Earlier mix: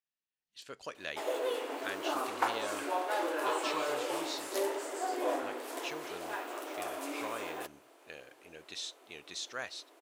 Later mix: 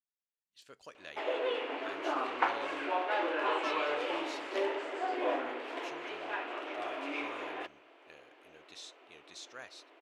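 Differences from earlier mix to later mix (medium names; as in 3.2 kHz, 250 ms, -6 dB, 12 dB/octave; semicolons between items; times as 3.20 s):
speech -8.0 dB; background: add resonant low-pass 2.7 kHz, resonance Q 1.9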